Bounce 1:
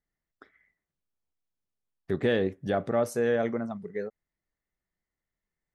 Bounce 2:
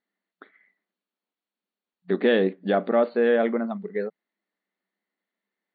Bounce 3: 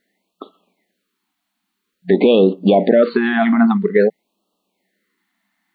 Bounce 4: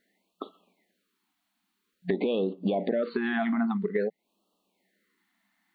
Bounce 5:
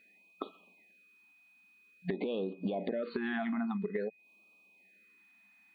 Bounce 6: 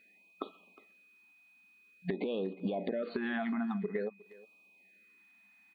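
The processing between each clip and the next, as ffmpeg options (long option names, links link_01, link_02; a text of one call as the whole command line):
ffmpeg -i in.wav -af "afftfilt=real='re*between(b*sr/4096,180,4600)':imag='im*between(b*sr/4096,180,4600)':win_size=4096:overlap=0.75,volume=5.5dB" out.wav
ffmpeg -i in.wav -af "alimiter=level_in=18.5dB:limit=-1dB:release=50:level=0:latency=1,afftfilt=real='re*(1-between(b*sr/1024,440*pow(1900/440,0.5+0.5*sin(2*PI*0.5*pts/sr))/1.41,440*pow(1900/440,0.5+0.5*sin(2*PI*0.5*pts/sr))*1.41))':imag='im*(1-between(b*sr/1024,440*pow(1900/440,0.5+0.5*sin(2*PI*0.5*pts/sr))/1.41,440*pow(1900/440,0.5+0.5*sin(2*PI*0.5*pts/sr))*1.41))':win_size=1024:overlap=0.75,volume=-1.5dB" out.wav
ffmpeg -i in.wav -af "acompressor=threshold=-23dB:ratio=4,volume=-3.5dB" out.wav
ffmpeg -i in.wav -af "acompressor=threshold=-32dB:ratio=5,aeval=exprs='val(0)+0.000794*sin(2*PI*2500*n/s)':channel_layout=same" out.wav
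ffmpeg -i in.wav -filter_complex "[0:a]asplit=2[link_01][link_02];[link_02]adelay=360,highpass=300,lowpass=3400,asoftclip=type=hard:threshold=-28.5dB,volume=-19dB[link_03];[link_01][link_03]amix=inputs=2:normalize=0" out.wav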